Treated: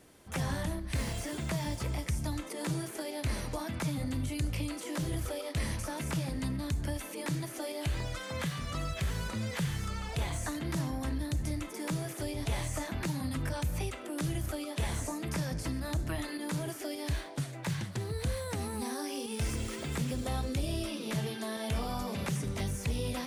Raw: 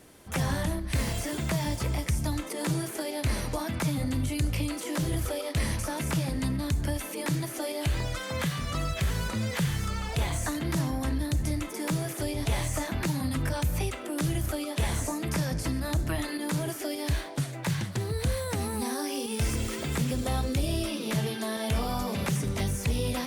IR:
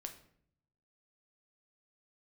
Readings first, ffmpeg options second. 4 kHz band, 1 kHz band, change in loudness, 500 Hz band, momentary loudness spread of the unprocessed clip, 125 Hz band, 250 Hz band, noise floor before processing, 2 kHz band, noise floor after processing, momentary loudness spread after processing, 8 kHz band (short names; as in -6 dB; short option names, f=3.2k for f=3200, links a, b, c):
-5.0 dB, -5.0 dB, -5.0 dB, -5.0 dB, 3 LU, -5.0 dB, -5.0 dB, -38 dBFS, -5.0 dB, -43 dBFS, 3 LU, -5.5 dB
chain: -af "equalizer=f=16k:w=2.3:g=-15,volume=-5dB"